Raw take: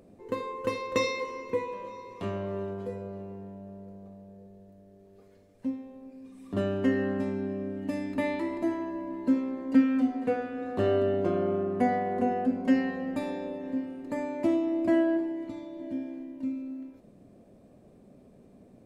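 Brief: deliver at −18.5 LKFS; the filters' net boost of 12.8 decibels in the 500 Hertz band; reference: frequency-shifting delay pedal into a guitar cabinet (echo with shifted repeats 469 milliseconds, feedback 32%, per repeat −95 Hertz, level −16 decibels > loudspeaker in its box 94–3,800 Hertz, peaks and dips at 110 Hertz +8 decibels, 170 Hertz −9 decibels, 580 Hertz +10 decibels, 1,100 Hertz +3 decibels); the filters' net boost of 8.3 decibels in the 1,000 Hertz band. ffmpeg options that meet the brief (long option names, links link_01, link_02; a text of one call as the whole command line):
ffmpeg -i in.wav -filter_complex "[0:a]equalizer=frequency=500:width_type=o:gain=8,equalizer=frequency=1000:width_type=o:gain=4,asplit=4[link_01][link_02][link_03][link_04];[link_02]adelay=469,afreqshift=-95,volume=-16dB[link_05];[link_03]adelay=938,afreqshift=-190,volume=-25.9dB[link_06];[link_04]adelay=1407,afreqshift=-285,volume=-35.8dB[link_07];[link_01][link_05][link_06][link_07]amix=inputs=4:normalize=0,highpass=94,equalizer=frequency=110:width_type=q:width=4:gain=8,equalizer=frequency=170:width_type=q:width=4:gain=-9,equalizer=frequency=580:width_type=q:width=4:gain=10,equalizer=frequency=1100:width_type=q:width=4:gain=3,lowpass=frequency=3800:width=0.5412,lowpass=frequency=3800:width=1.3066,volume=2.5dB" out.wav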